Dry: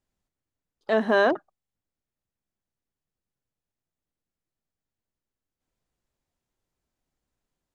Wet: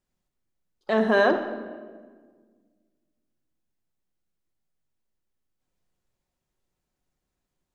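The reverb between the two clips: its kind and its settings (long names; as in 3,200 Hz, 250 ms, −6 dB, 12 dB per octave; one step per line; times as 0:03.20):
rectangular room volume 1,600 cubic metres, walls mixed, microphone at 0.98 metres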